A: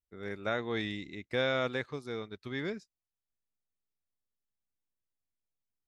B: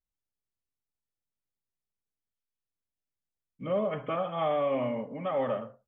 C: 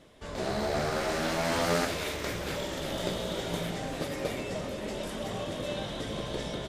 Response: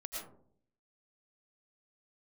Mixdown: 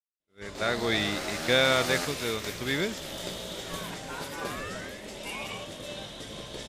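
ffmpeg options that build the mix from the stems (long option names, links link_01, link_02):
-filter_complex "[0:a]dynaudnorm=framelen=140:gausssize=7:maxgain=10.5dB,adelay=150,volume=-5.5dB[link_01];[1:a]highpass=frequency=890:width_type=q:width=1.6,aeval=exprs='val(0)*sin(2*PI*970*n/s+970*0.75/0.36*sin(2*PI*0.36*n/s))':channel_layout=same,volume=-8dB[link_02];[2:a]adelay=200,volume=-6.5dB[link_03];[link_01][link_02][link_03]amix=inputs=3:normalize=0,agate=range=-33dB:threshold=-40dB:ratio=3:detection=peak,highshelf=frequency=2300:gain=9.5"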